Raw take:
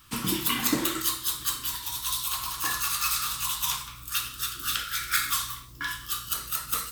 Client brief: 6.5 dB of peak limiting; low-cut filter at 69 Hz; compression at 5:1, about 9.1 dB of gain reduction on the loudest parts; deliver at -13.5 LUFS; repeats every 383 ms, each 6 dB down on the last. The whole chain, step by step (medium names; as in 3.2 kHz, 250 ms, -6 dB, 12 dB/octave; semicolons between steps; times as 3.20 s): high-pass 69 Hz; compression 5:1, threshold -31 dBFS; peak limiter -23.5 dBFS; feedback delay 383 ms, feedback 50%, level -6 dB; trim +19.5 dB